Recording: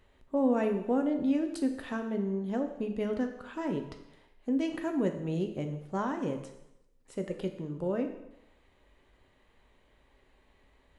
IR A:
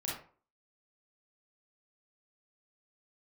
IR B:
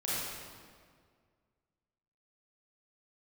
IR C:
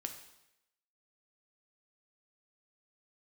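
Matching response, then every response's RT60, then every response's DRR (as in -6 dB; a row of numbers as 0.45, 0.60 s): C; 0.45, 1.9, 0.85 s; -5.5, -9.5, 5.0 dB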